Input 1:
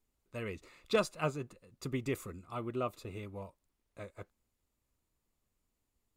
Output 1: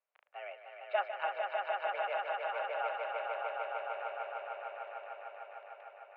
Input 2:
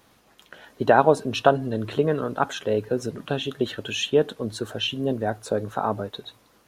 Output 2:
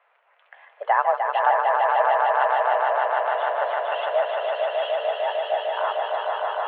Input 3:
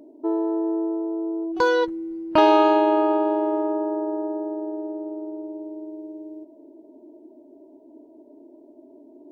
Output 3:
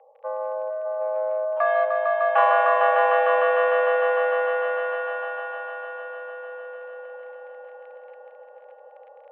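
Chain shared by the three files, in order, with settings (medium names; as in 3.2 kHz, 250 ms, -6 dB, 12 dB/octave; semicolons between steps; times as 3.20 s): echo with a slow build-up 151 ms, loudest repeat 5, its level -4 dB; in parallel at -10 dB: hard clipper -16.5 dBFS; on the sum: crackle 27 per s -32 dBFS; mistuned SSB +190 Hz 380–2500 Hz; trim -4.5 dB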